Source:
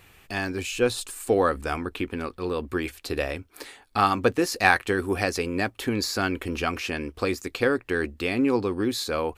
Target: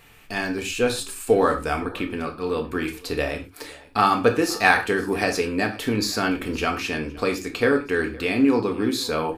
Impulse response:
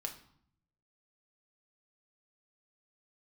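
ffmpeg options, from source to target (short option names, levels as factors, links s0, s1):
-filter_complex "[0:a]aecho=1:1:515:0.0794[s0];[1:a]atrim=start_sample=2205,afade=t=out:st=0.17:d=0.01,atrim=end_sample=7938[s1];[s0][s1]afir=irnorm=-1:irlink=0,volume=1.58"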